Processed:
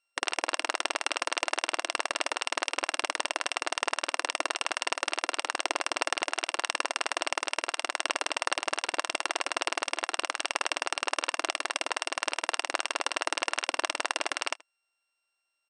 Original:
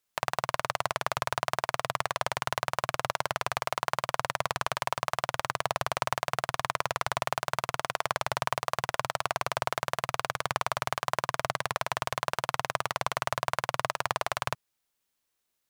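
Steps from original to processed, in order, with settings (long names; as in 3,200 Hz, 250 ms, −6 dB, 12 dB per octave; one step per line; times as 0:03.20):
samples sorted by size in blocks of 16 samples
linear-phase brick-wall band-pass 540–9,800 Hz
on a send: single-tap delay 79 ms −23 dB
on the sum: pitch-shifted copies added −12 semitones −9 dB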